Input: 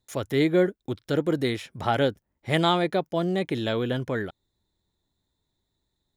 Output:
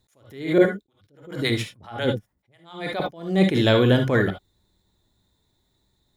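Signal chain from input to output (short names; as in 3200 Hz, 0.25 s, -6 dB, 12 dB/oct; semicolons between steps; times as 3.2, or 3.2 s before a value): 0.58–3 harmonic tremolo 7.3 Hz, depth 100%, crossover 560 Hz; non-linear reverb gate 90 ms rising, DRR 6.5 dB; attack slew limiter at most 110 dB/s; gain +8.5 dB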